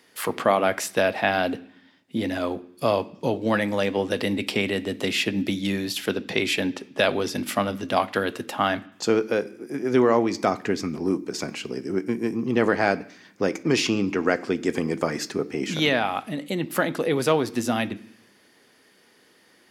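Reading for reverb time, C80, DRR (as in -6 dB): 0.65 s, 22.0 dB, 11.5 dB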